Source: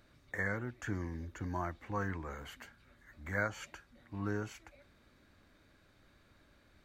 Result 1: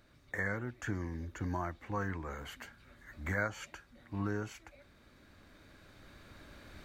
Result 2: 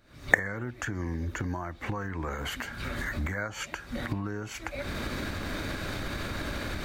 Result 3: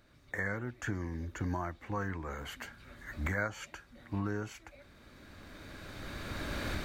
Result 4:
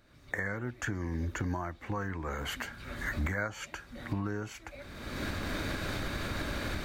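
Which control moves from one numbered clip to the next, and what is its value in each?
recorder AGC, rising by: 5.4, 89, 13, 36 dB/s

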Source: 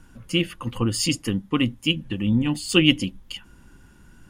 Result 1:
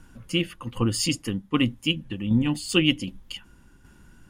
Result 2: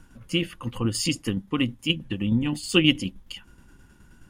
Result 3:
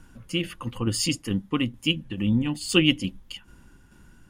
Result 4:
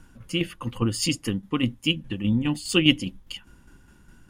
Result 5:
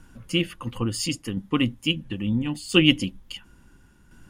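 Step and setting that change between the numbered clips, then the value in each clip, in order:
tremolo, rate: 1.3, 9.5, 2.3, 4.9, 0.73 Hz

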